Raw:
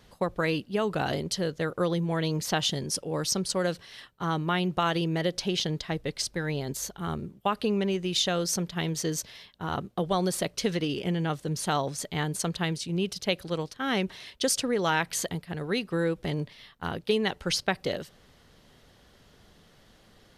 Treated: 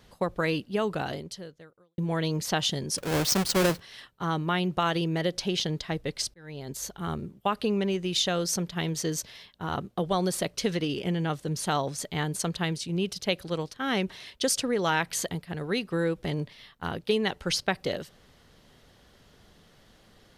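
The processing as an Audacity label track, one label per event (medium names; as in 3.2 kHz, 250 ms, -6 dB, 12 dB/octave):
0.850000	1.980000	fade out quadratic
2.980000	3.800000	square wave that keeps the level
6.340000	6.910000	fade in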